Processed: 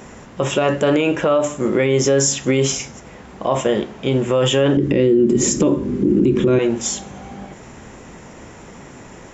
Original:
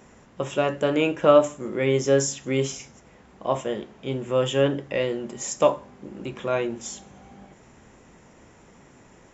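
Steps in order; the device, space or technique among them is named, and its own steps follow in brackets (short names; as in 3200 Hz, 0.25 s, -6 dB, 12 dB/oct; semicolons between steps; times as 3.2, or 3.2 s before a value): 4.77–6.59 resonant low shelf 490 Hz +12.5 dB, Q 3; loud club master (compressor 3:1, threshold -20 dBFS, peak gain reduction 10.5 dB; hard clip -9.5 dBFS, distortion -35 dB; maximiser +19 dB); gain -6 dB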